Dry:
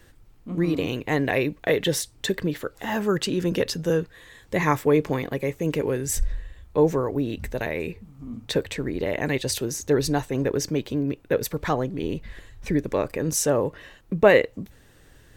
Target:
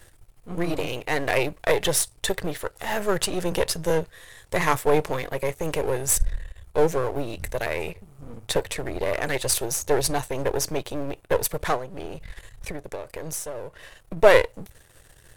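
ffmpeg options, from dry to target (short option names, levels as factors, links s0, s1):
-filter_complex "[0:a]aeval=exprs='if(lt(val(0),0),0.251*val(0),val(0))':c=same,equalizer=f=250:t=o:w=0.67:g=-11,equalizer=f=630:t=o:w=0.67:g=3,equalizer=f=10000:t=o:w=0.67:g=10,asettb=1/sr,asplit=3[s0][s1][s2];[s0]atrim=end=11.764[s3];[s1]atrim=start=11.76:end=14.17,asetpts=PTS-STARTPTS,afade=t=in:d=0.004:c=qsin,afade=t=out:st=2.406:d=0.004:c=qsin,acompressor=threshold=0.0224:ratio=12[s4];[s2]atrim=start=14.166[s5];[s3][s4]acrossfade=d=0.004:c1=hsin:c2=qsin[s6];[s6][s5]acrossfade=d=0.004:c1=qsin:c2=hsin,volume=1.58"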